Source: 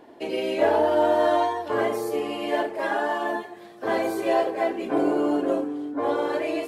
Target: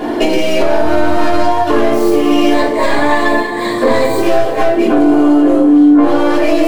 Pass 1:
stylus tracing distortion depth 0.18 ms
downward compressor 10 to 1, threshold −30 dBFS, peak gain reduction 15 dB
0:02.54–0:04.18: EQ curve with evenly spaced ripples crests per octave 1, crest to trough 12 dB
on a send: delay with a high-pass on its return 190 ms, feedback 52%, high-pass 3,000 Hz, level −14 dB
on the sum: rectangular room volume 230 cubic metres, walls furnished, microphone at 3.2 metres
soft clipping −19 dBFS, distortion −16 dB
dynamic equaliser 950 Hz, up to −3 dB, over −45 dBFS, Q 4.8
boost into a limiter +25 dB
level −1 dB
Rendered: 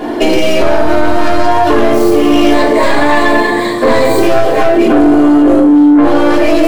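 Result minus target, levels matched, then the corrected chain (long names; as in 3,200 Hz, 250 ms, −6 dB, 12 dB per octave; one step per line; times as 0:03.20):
downward compressor: peak gain reduction −9 dB
stylus tracing distortion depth 0.18 ms
downward compressor 10 to 1, threshold −40 dBFS, peak gain reduction 24 dB
0:02.54–0:04.18: EQ curve with evenly spaced ripples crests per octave 1, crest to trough 12 dB
on a send: delay with a high-pass on its return 190 ms, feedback 52%, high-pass 3,000 Hz, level −14 dB
on the sum: rectangular room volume 230 cubic metres, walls furnished, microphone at 3.2 metres
soft clipping −19 dBFS, distortion −30 dB
dynamic equaliser 950 Hz, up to −3 dB, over −45 dBFS, Q 4.8
boost into a limiter +25 dB
level −1 dB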